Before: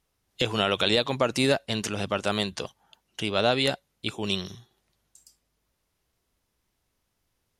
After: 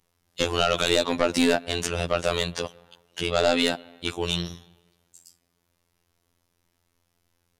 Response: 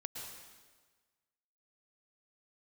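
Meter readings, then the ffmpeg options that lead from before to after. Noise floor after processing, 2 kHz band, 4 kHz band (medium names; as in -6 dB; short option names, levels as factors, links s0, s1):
-74 dBFS, +1.5 dB, +0.5 dB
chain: -filter_complex "[0:a]asplit=2[s0][s1];[1:a]atrim=start_sample=2205,lowpass=2700[s2];[s1][s2]afir=irnorm=-1:irlink=0,volume=0.112[s3];[s0][s3]amix=inputs=2:normalize=0,aeval=exprs='0.398*sin(PI/2*2*val(0)/0.398)':c=same,afftfilt=real='hypot(re,im)*cos(PI*b)':imag='0':win_size=2048:overlap=0.75,volume=0.708"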